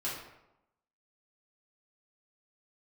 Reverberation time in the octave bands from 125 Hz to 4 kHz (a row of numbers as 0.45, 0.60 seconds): 0.85, 0.90, 0.90, 0.90, 0.70, 0.55 seconds